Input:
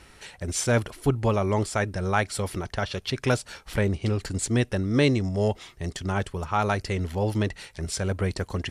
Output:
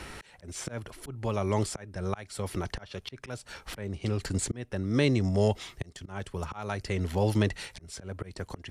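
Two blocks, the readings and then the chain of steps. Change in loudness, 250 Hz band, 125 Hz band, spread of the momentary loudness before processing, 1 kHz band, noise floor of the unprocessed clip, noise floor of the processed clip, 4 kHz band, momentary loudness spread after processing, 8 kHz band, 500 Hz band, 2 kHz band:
−5.5 dB, −4.5 dB, −5.0 dB, 7 LU, −8.5 dB, −53 dBFS, −57 dBFS, −5.5 dB, 15 LU, −6.5 dB, −5.5 dB, −8.5 dB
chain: volume swells 785 ms
multiband upward and downward compressor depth 40%
level +2 dB

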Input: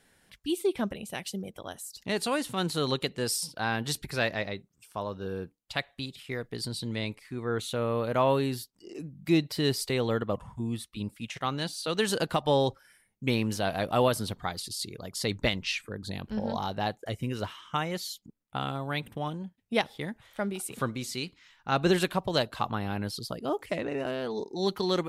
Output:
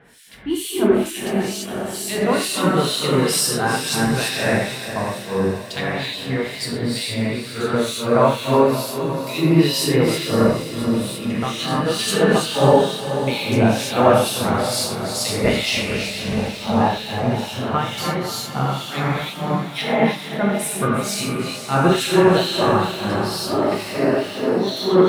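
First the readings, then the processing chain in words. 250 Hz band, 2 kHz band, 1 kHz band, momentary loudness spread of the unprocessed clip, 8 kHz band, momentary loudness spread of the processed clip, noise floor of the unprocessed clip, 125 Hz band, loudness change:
+12.0 dB, +10.0 dB, +11.0 dB, 12 LU, +12.5 dB, 8 LU, −69 dBFS, +11.0 dB, +11.5 dB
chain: mu-law and A-law mismatch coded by mu
reverb whose tail is shaped and stops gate 360 ms flat, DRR −7 dB
two-band tremolo in antiphase 2.2 Hz, depth 100%, crossover 2,300 Hz
high-pass filter 66 Hz
feedback delay with all-pass diffusion 492 ms, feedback 50%, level −9.5 dB
level +6.5 dB

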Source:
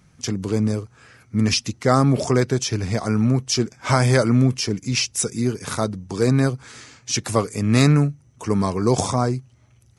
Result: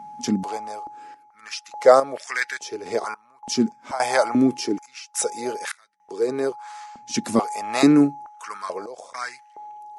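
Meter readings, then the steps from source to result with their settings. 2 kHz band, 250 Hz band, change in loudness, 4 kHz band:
−0.5 dB, −2.0 dB, −2.0 dB, −7.0 dB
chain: steady tone 840 Hz −35 dBFS
sample-and-hold tremolo, depth 95%
high-pass on a step sequencer 2.3 Hz 230–1,800 Hz
level −1 dB

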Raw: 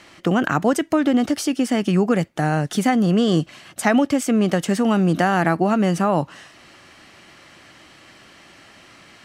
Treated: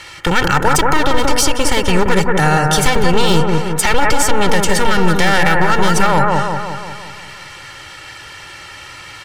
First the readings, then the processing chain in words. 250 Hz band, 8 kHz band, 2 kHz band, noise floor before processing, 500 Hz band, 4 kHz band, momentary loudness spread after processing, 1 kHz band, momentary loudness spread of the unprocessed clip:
−1.0 dB, +13.0 dB, +10.5 dB, −49 dBFS, +5.0 dB, +12.5 dB, 19 LU, +9.0 dB, 4 LU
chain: wavefolder on the positive side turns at −19 dBFS
parametric band 350 Hz −11 dB 1.9 octaves
comb filter 2.2 ms, depth 73%
on a send: bucket-brigade delay 178 ms, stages 2,048, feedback 57%, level −3.5 dB
on the sum: boost into a limiter +13 dB
level −1 dB

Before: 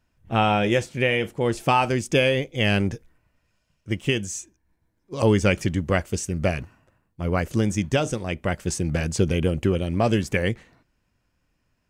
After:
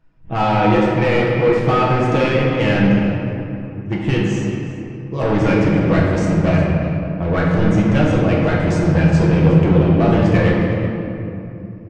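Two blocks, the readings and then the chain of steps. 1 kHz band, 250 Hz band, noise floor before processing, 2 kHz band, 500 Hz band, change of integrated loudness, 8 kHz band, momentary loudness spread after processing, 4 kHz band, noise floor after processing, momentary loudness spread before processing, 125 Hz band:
+6.0 dB, +10.0 dB, −72 dBFS, +4.0 dB, +7.0 dB, +7.5 dB, can't be measured, 12 LU, −0.5 dB, −31 dBFS, 8 LU, +10.0 dB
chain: dynamic equaliser 1,500 Hz, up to +4 dB, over −37 dBFS, Q 0.91
comb filter 6.3 ms, depth 34%
in parallel at +1.5 dB: speech leveller 0.5 s
on the sum: hard clipping −14.5 dBFS, distortion −7 dB
head-to-tape spacing loss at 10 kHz 25 dB
on a send: single-tap delay 365 ms −16.5 dB
on the sum: rectangular room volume 120 cubic metres, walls hard, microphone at 0.63 metres
level −1 dB

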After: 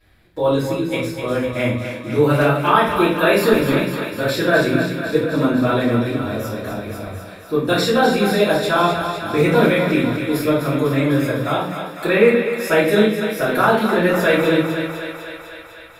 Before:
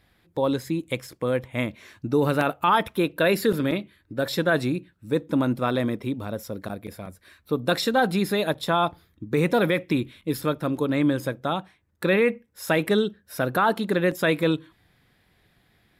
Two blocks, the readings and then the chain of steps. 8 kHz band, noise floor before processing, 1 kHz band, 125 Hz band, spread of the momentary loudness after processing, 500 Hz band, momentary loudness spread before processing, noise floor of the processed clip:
+6.0 dB, −65 dBFS, +6.5 dB, +7.0 dB, 11 LU, +8.0 dB, 11 LU, −39 dBFS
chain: feedback echo with a high-pass in the loop 251 ms, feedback 73%, high-pass 360 Hz, level −7.5 dB
rectangular room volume 67 cubic metres, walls mixed, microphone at 2.8 metres
level −6 dB

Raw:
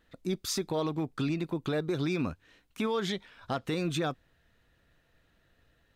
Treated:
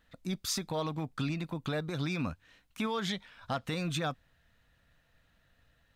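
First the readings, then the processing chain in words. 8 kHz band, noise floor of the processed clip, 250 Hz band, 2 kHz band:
0.0 dB, −70 dBFS, −3.5 dB, 0.0 dB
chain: parametric band 370 Hz −10.5 dB 0.64 octaves

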